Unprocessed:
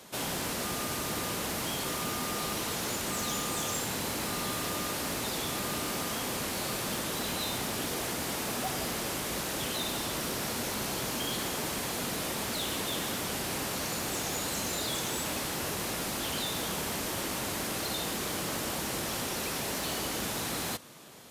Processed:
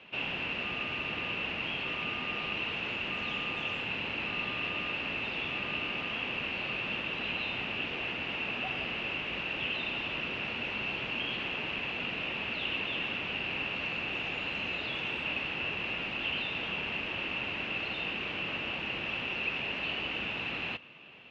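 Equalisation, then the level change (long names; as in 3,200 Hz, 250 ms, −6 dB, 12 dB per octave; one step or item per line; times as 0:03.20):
low-pass with resonance 2,700 Hz, resonance Q 14
high-frequency loss of the air 150 metres
−5.5 dB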